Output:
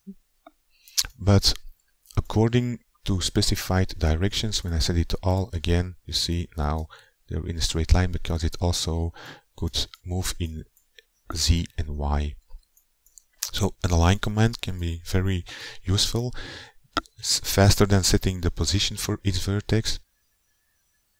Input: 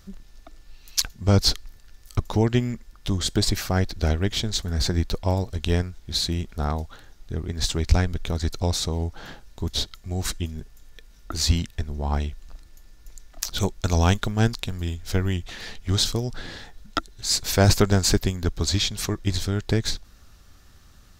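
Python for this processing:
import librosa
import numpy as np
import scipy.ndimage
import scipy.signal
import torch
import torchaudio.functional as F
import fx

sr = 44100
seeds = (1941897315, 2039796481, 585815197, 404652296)

y = fx.noise_reduce_blind(x, sr, reduce_db=25)
y = fx.quant_dither(y, sr, seeds[0], bits=12, dither='triangular')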